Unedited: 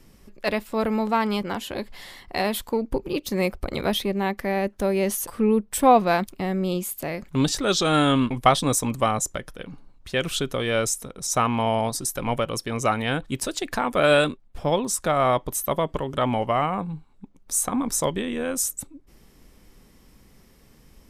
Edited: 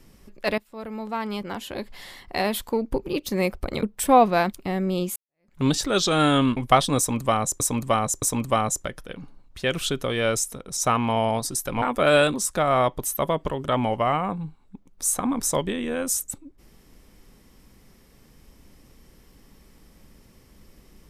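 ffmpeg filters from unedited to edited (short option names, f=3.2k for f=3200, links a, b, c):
-filter_complex "[0:a]asplit=8[a][b][c][d][e][f][g][h];[a]atrim=end=0.58,asetpts=PTS-STARTPTS,afade=t=out:st=0.576:d=0.004:c=hsin:silence=0.105925[i];[b]atrim=start=0.58:end=3.832,asetpts=PTS-STARTPTS,afade=t=in:d=1.5:silence=0.105925[j];[c]atrim=start=5.568:end=6.9,asetpts=PTS-STARTPTS,afade=t=out:st=1.328:d=0.004:c=hsin[k];[d]atrim=start=6.9:end=9.342,asetpts=PTS-STARTPTS,afade=t=in:d=0.42:c=exp[l];[e]atrim=start=8.718:end=9.342[m];[f]atrim=start=8.718:end=12.322[n];[g]atrim=start=13.788:end=14.312[o];[h]atrim=start=14.828[p];[i][j]concat=n=2:v=0:a=1[q];[k][l]concat=n=2:v=0:a=1[r];[q][r]acrossfade=d=0.004:c1=hsin:c2=hsin[s];[s][m]acrossfade=d=0.004:c1=hsin:c2=hsin[t];[t][n]acrossfade=d=0.004:c1=hsin:c2=hsin[u];[u][o]acrossfade=d=0.004:c1=hsin:c2=hsin[v];[v][p]acrossfade=d=0.004:c1=hsin:c2=hsin"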